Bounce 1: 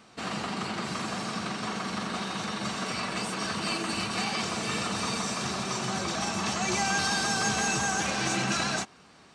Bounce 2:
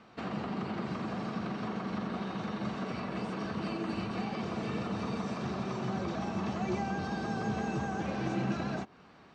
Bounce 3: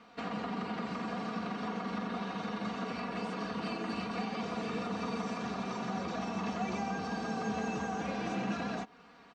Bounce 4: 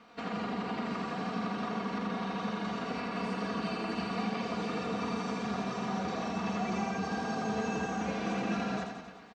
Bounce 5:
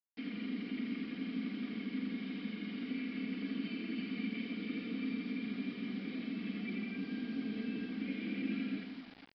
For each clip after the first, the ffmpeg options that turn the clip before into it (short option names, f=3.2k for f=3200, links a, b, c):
-filter_complex "[0:a]lowpass=5k,highshelf=f=3.2k:g=-11,acrossover=split=650[a][b];[b]acompressor=threshold=-42dB:ratio=6[c];[a][c]amix=inputs=2:normalize=0"
-af "lowshelf=f=340:g=-6.5,aecho=1:1:4.2:0.62"
-af "aecho=1:1:80|168|264.8|371.3|488.4:0.631|0.398|0.251|0.158|0.1"
-filter_complex "[0:a]asplit=3[a][b][c];[a]bandpass=f=270:t=q:w=8,volume=0dB[d];[b]bandpass=f=2.29k:t=q:w=8,volume=-6dB[e];[c]bandpass=f=3.01k:t=q:w=8,volume=-9dB[f];[d][e][f]amix=inputs=3:normalize=0,acrusher=bits=9:mix=0:aa=0.000001,aresample=11025,aresample=44100,volume=6.5dB"